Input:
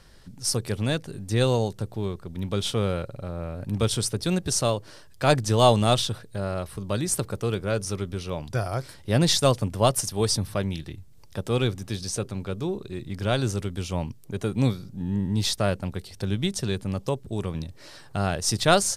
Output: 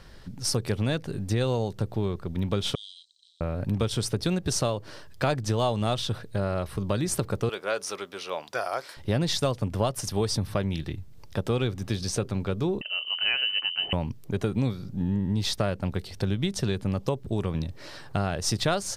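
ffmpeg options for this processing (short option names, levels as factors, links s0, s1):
-filter_complex "[0:a]asettb=1/sr,asplit=3[s0][s1][s2];[s0]atrim=end=2.754[s3];[s1]atrim=start=2.75:end=3.41,asetpts=PTS-STARTPTS,afade=t=in:d=0.004:c=qsin,afade=t=out:st=0.656:d=0.004:c=qsin,asuperpass=centerf=5400:order=20:qfactor=0.99[s4];[s2]atrim=start=3.406[s5];[s3][s4]acrossfade=d=0.004:c1=hsin:c2=qsin[s6];[s6][s5]acrossfade=d=0.004:c1=qsin:c2=hsin,asettb=1/sr,asplit=3[s7][s8][s9];[s7]atrim=end=7.494[s10];[s8]atrim=start=7.49:end=8.97,asetpts=PTS-STARTPTS,afade=t=in:d=0.004:c=qsin,afade=t=out:st=1.476:d=0.004:c=qsin,highpass=610[s11];[s9]atrim=start=8.966[s12];[s10][s11]acrossfade=d=0.004:c1=hsin:c2=qsin[s13];[s13][s12]acrossfade=d=0.004:c1=qsin:c2=hsin,asettb=1/sr,asplit=3[s14][s15][s16];[s14]atrim=end=12.814[s17];[s15]atrim=start=12.81:end=13.93,asetpts=PTS-STARTPTS,afade=t=in:d=0.004:c=qsin,afade=t=out:st=1.116:d=0.004:c=qsin,lowpass=f=2600:t=q:w=0.5098,lowpass=f=2600:t=q:w=0.6013,lowpass=f=2600:t=q:w=0.9,lowpass=f=2600:t=q:w=2.563,afreqshift=-3100[s18];[s16]atrim=start=13.926[s19];[s17][s18]acrossfade=d=0.004:c1=hsin:c2=qsin[s20];[s20][s19]acrossfade=d=0.004:c1=qsin:c2=hsin,equalizer=f=9600:w=0.66:g=-8,acompressor=threshold=0.0447:ratio=6,volume=1.68"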